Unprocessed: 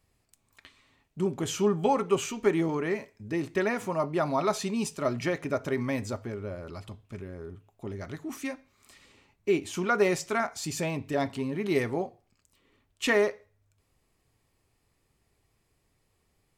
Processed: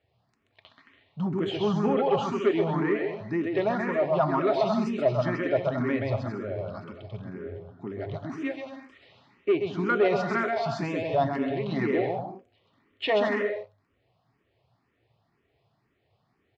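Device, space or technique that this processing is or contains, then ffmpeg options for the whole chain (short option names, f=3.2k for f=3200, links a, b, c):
barber-pole phaser into a guitar amplifier: -filter_complex "[0:a]asettb=1/sr,asplit=3[a][b][c];[a]atrim=end=9.524[d];[b]atrim=start=9.52:end=10.05,asetpts=PTS-STARTPTS,afade=t=in:d=0.004:c=qsin,afade=t=out:st=0.526:d=0.004:c=qsin,lowpass=f=3.1k:p=1[e];[c]atrim=start=10.046[f];[d][e]acrossfade=d=0.004:c1=hsin:c2=qsin[g];[g][f]acrossfade=d=0.004:c1=qsin:c2=hsin,aecho=1:1:130|221|284.7|329.3|360.5:0.631|0.398|0.251|0.158|0.1,asplit=2[h][i];[i]afreqshift=2[j];[h][j]amix=inputs=2:normalize=1,asoftclip=type=tanh:threshold=-18dB,highpass=110,equalizer=f=120:t=q:w=4:g=6,equalizer=f=680:t=q:w=4:g=6,equalizer=f=2.4k:t=q:w=4:g=-3,lowpass=f=3.9k:w=0.5412,lowpass=f=3.9k:w=1.3066,volume=3.5dB"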